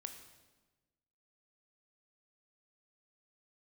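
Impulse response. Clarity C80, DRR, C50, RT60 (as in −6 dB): 10.0 dB, 6.0 dB, 8.0 dB, 1.2 s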